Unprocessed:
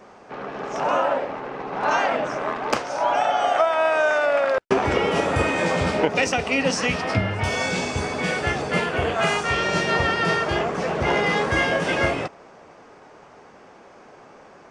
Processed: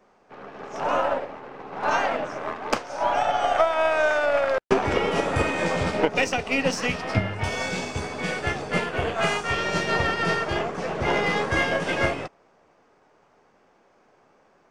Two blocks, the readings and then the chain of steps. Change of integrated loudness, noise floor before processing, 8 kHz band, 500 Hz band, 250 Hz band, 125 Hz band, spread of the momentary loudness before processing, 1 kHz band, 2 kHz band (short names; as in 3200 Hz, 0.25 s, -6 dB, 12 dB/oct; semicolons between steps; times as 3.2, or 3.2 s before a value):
-2.5 dB, -48 dBFS, -3.5 dB, -2.5 dB, -2.5 dB, -2.5 dB, 7 LU, -2.5 dB, -2.5 dB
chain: half-wave gain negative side -3 dB; upward expander 1.5:1, over -43 dBFS; gain +1.5 dB